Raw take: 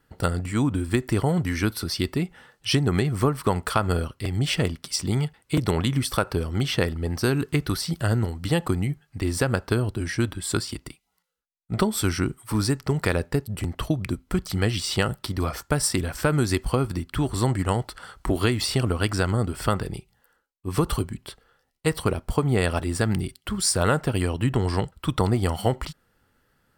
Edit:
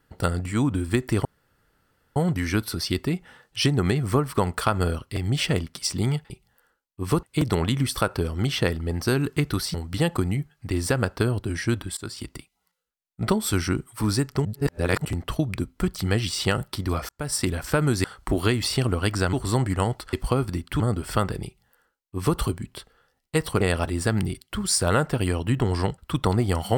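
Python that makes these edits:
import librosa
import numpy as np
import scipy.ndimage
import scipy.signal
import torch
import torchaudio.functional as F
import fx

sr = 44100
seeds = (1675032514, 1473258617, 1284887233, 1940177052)

y = fx.edit(x, sr, fx.insert_room_tone(at_s=1.25, length_s=0.91),
    fx.cut(start_s=7.9, length_s=0.35),
    fx.fade_in_from(start_s=10.48, length_s=0.33, floor_db=-22.0),
    fx.reverse_span(start_s=12.96, length_s=0.6),
    fx.fade_in_span(start_s=15.6, length_s=0.35),
    fx.swap(start_s=16.55, length_s=0.67, other_s=18.02, other_length_s=1.29),
    fx.duplicate(start_s=19.96, length_s=0.93, to_s=5.39),
    fx.cut(start_s=22.12, length_s=0.43), tone=tone)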